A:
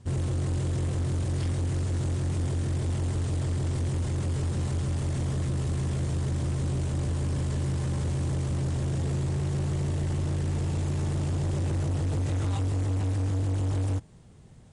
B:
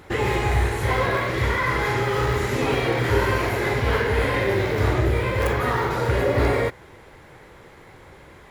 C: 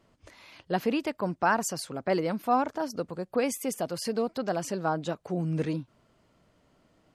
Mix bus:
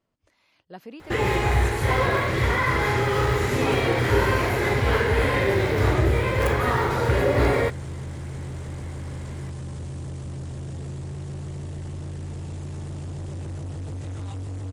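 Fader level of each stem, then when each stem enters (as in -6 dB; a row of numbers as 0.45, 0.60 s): -5.5, 0.0, -13.5 dB; 1.75, 1.00, 0.00 s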